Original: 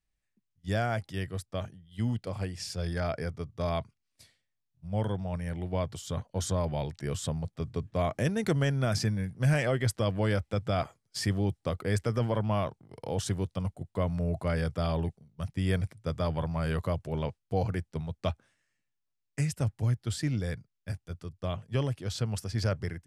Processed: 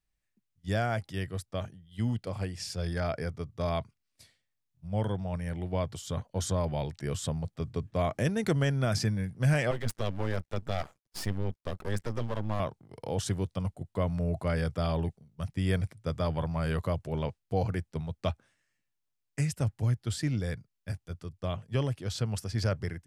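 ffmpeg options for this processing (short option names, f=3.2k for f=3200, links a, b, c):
-filter_complex "[0:a]asettb=1/sr,asplit=3[a][b][c];[a]atrim=end=9.714[d];[b]atrim=start=9.71:end=12.6,asetpts=PTS-STARTPTS,afade=t=in:d=0.004:c=qsin,afade=t=out:st=2.886:d=0.004:c=qsin,aeval=exprs='max(val(0),0)':c=same[e];[c]atrim=start=12.596[f];[d][e]acrossfade=d=0.004:c1=hsin:c2=qsin[g];[g][f]acrossfade=d=0.004:c1=qsin:c2=hsin"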